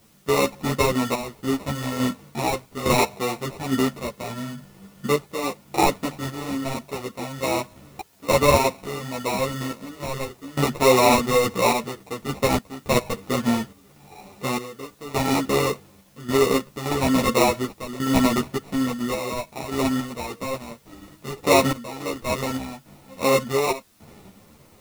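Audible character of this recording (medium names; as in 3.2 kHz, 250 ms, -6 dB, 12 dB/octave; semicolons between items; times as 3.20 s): aliases and images of a low sample rate 1.6 kHz, jitter 0%; random-step tremolo 3.5 Hz, depth 90%; a quantiser's noise floor 10-bit, dither triangular; a shimmering, thickened sound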